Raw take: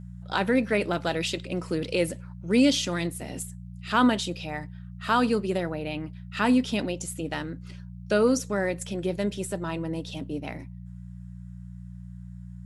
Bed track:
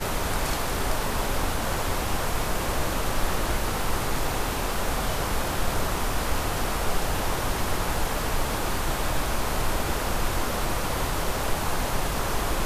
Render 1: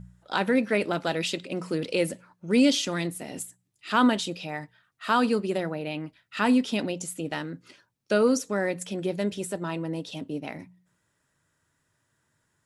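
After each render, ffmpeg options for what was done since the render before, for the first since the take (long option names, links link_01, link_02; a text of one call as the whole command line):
ffmpeg -i in.wav -af "bandreject=frequency=60:width_type=h:width=4,bandreject=frequency=120:width_type=h:width=4,bandreject=frequency=180:width_type=h:width=4" out.wav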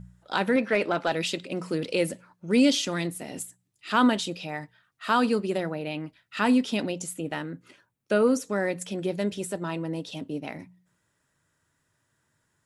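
ffmpeg -i in.wav -filter_complex "[0:a]asettb=1/sr,asplit=3[link_01][link_02][link_03];[link_01]atrim=end=0.564[link_04];[link_02]atrim=start=0.56:end=1.12,asetpts=PTS-STARTPTS,afade=type=in:duration=0.004:curve=qsin,afade=type=out:start_time=0.556:duration=0.004:curve=qsin,asplit=2[link_05][link_06];[link_06]highpass=frequency=720:poles=1,volume=11dB,asoftclip=type=tanh:threshold=-11dB[link_07];[link_05][link_07]amix=inputs=2:normalize=0,lowpass=frequency=2000:poles=1,volume=-6dB[link_08];[link_03]atrim=start=1.116[link_09];[link_04][link_08]acrossfade=duration=0.004:curve1=hsin:curve2=qsin[link_10];[link_10][link_09]acrossfade=duration=0.004:curve1=qsin:curve2=hsin,asettb=1/sr,asplit=3[link_11][link_12][link_13];[link_11]atrim=end=7.164[link_14];[link_12]atrim=start=7.16:end=8.42,asetpts=PTS-STARTPTS,afade=type=in:duration=0.004:curve=qsin,afade=type=out:start_time=1.256:duration=0.004:curve=qsin,equalizer=frequency=4900:width_type=o:width=0.84:gain=-8[link_15];[link_13]atrim=start=8.416[link_16];[link_14][link_15]acrossfade=duration=0.004:curve1=hsin:curve2=qsin[link_17];[link_17][link_16]acrossfade=duration=0.004:curve1=qsin:curve2=hsin" out.wav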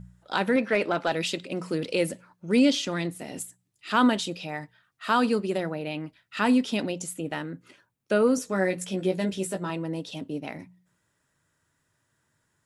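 ffmpeg -i in.wav -filter_complex "[0:a]asettb=1/sr,asplit=3[link_01][link_02][link_03];[link_01]atrim=end=2.594[link_04];[link_02]atrim=start=2.59:end=3.19,asetpts=PTS-STARTPTS,afade=type=in:duration=0.004:curve=qsin,afade=type=out:start_time=0.596:duration=0.004:curve=qsin,highshelf=frequency=7300:gain=-9[link_05];[link_03]atrim=start=3.186[link_06];[link_04][link_05]acrossfade=duration=0.004:curve1=hsin:curve2=qsin[link_07];[link_07][link_06]acrossfade=duration=0.004:curve1=qsin:curve2=hsin,asettb=1/sr,asplit=3[link_08][link_09][link_10];[link_08]atrim=end=8.364[link_11];[link_09]atrim=start=8.36:end=9.7,asetpts=PTS-STARTPTS,afade=type=in:duration=0.004:curve=qsin,afade=type=out:start_time=1.336:duration=0.004:curve=qsin,asplit=2[link_12][link_13];[link_13]adelay=16,volume=-4dB[link_14];[link_12][link_14]amix=inputs=2:normalize=0,atrim=end_sample=59094[link_15];[link_10]atrim=start=9.696[link_16];[link_11][link_15]acrossfade=duration=0.004:curve1=hsin:curve2=qsin[link_17];[link_17][link_16]acrossfade=duration=0.004:curve1=qsin:curve2=hsin" out.wav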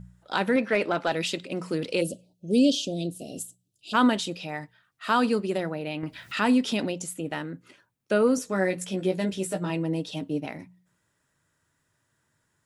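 ffmpeg -i in.wav -filter_complex "[0:a]asplit=3[link_01][link_02][link_03];[link_01]afade=type=out:start_time=2:duration=0.02[link_04];[link_02]asuperstop=centerf=1400:order=12:qfactor=0.68,afade=type=in:start_time=2:duration=0.02,afade=type=out:start_time=3.93:duration=0.02[link_05];[link_03]afade=type=in:start_time=3.93:duration=0.02[link_06];[link_04][link_05][link_06]amix=inputs=3:normalize=0,asettb=1/sr,asplit=3[link_07][link_08][link_09];[link_07]atrim=end=6.034[link_10];[link_08]atrim=start=6.03:end=6.9,asetpts=PTS-STARTPTS,afade=type=in:duration=0.004:curve=qsin,afade=type=out:start_time=0.866:duration=0.004:curve=qsin,acompressor=mode=upward:threshold=-23dB:ratio=2.5:attack=3.2:release=140:knee=2.83:detection=peak[link_11];[link_09]atrim=start=6.896[link_12];[link_10][link_11]acrossfade=duration=0.004:curve1=hsin:curve2=qsin[link_13];[link_13][link_12]acrossfade=duration=0.004:curve1=qsin:curve2=hsin,asettb=1/sr,asplit=3[link_14][link_15][link_16];[link_14]atrim=end=9.514[link_17];[link_15]atrim=start=9.51:end=10.46,asetpts=PTS-STARTPTS,afade=type=in:duration=0.004:curve=qsin,afade=type=out:start_time=0.946:duration=0.004:curve=qsin,aecho=1:1:6.5:0.65,atrim=end_sample=41895[link_18];[link_16]atrim=start=10.456[link_19];[link_17][link_18]acrossfade=duration=0.004:curve1=hsin:curve2=qsin[link_20];[link_20][link_19]acrossfade=duration=0.004:curve1=qsin:curve2=hsin" out.wav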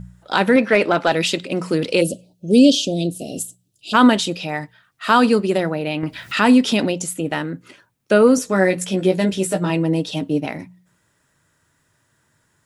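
ffmpeg -i in.wav -af "volume=9dB,alimiter=limit=-2dB:level=0:latency=1" out.wav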